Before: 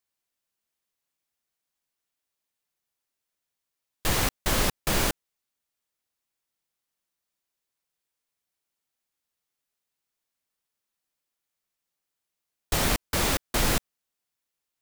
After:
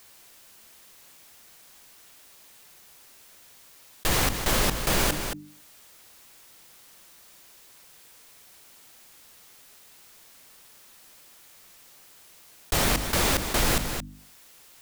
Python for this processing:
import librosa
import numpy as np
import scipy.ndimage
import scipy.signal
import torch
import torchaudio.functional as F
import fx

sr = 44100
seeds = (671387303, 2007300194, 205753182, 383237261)

y = fx.hum_notches(x, sr, base_hz=50, count=6)
y = y + 10.0 ** (-16.0 / 20.0) * np.pad(y, (int(223 * sr / 1000.0), 0))[:len(y)]
y = fx.env_flatten(y, sr, amount_pct=50)